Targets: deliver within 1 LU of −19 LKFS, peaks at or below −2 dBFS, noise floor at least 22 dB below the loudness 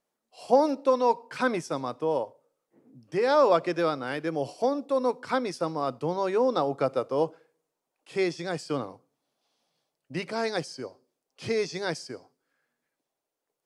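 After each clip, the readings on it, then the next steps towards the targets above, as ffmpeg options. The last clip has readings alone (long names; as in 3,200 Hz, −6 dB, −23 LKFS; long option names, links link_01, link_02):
integrated loudness −27.5 LKFS; sample peak −8.5 dBFS; target loudness −19.0 LKFS
→ -af "volume=8.5dB,alimiter=limit=-2dB:level=0:latency=1"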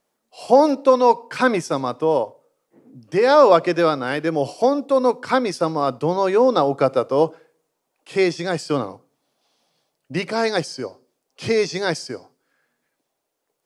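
integrated loudness −19.5 LKFS; sample peak −2.0 dBFS; background noise floor −77 dBFS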